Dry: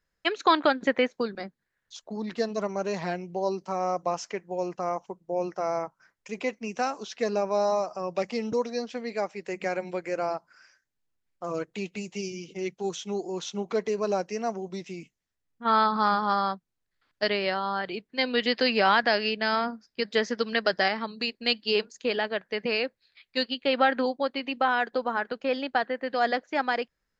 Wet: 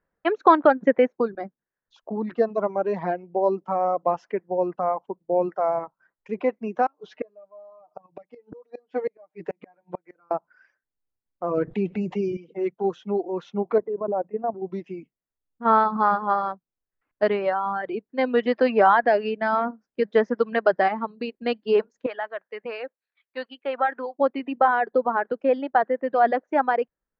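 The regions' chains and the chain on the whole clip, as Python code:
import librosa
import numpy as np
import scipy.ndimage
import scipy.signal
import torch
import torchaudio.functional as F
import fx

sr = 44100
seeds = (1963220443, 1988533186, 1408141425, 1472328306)

y = fx.chain(x, sr, fx.comb(ms=6.6, depth=0.89),
    fx.gate_flip(shuts_db=-22.0, range_db=-30), at=(6.86, 10.31))
y = fx.chain(y, sr, fx.low_shelf(hz=200.0, db=8.0),
    fx.env_flatten(amount_pct=70), at=(11.57, 12.37))
y = fx.chain(y, sr, fx.lowpass(hz=1100.0, slope=12),
    fx.hum_notches(base_hz=60, count=5),
    fx.level_steps(step_db=10), at=(13.78, 14.62))
y = fx.chain(y, sr, fx.highpass(hz=1400.0, slope=6),
    fx.high_shelf(hz=5700.0, db=-10.0), at=(22.06, 24.19))
y = fx.dereverb_blind(y, sr, rt60_s=1.4)
y = scipy.signal.sosfilt(scipy.signal.butter(2, 1100.0, 'lowpass', fs=sr, output='sos'), y)
y = fx.low_shelf(y, sr, hz=130.0, db=-11.0)
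y = y * librosa.db_to_amplitude(8.5)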